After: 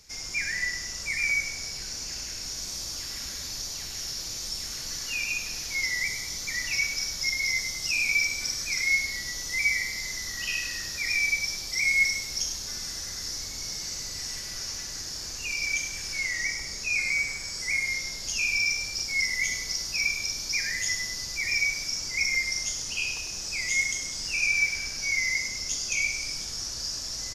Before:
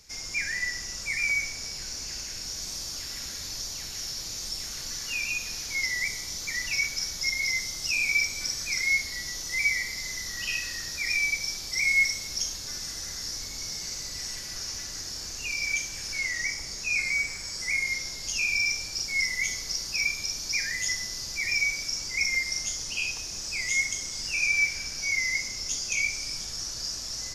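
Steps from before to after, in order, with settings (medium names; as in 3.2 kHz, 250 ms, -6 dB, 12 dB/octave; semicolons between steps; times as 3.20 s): feedback delay 101 ms, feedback 43%, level -9 dB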